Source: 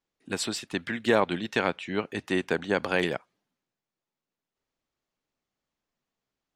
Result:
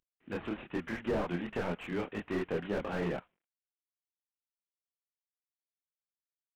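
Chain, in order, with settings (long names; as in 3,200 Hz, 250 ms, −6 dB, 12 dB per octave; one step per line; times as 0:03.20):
variable-slope delta modulation 16 kbit/s
multi-voice chorus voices 6, 1.2 Hz, delay 26 ms, depth 3.4 ms
slew-rate limiting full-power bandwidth 19 Hz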